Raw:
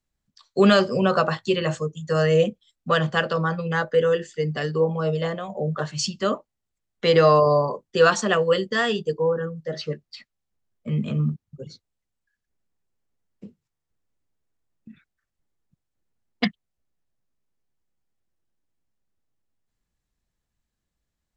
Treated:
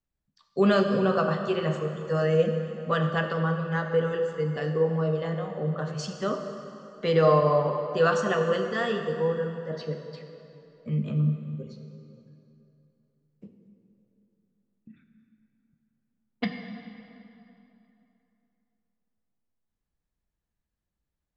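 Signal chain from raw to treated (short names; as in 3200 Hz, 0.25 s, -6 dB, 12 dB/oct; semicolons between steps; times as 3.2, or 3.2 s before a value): high shelf 2900 Hz -9.5 dB; plate-style reverb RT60 3 s, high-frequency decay 0.75×, DRR 4.5 dB; gain -5 dB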